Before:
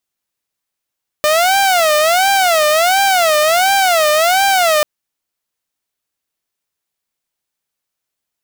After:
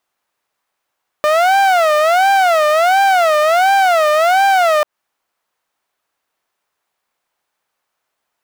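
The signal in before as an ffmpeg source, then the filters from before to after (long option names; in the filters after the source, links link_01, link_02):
-f lavfi -i "aevalsrc='0.422*(2*mod((696.5*t-94.5/(2*PI*1.4)*sin(2*PI*1.4*t)),1)-1)':duration=3.59:sample_rate=44100"
-af "equalizer=frequency=960:width=0.42:gain=14.5,alimiter=limit=-6dB:level=0:latency=1:release=141"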